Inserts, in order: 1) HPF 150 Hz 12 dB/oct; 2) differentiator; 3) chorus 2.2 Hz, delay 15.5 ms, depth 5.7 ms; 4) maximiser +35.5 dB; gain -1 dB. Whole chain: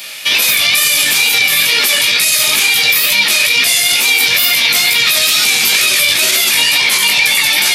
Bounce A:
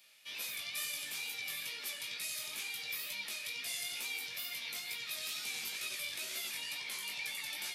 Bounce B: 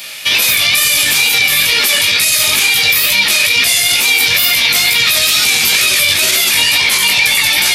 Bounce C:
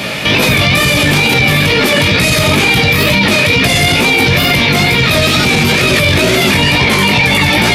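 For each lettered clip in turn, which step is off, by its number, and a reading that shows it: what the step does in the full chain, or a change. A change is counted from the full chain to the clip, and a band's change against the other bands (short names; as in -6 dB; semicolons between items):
4, crest factor change +6.0 dB; 1, 125 Hz band +4.5 dB; 2, 125 Hz band +20.5 dB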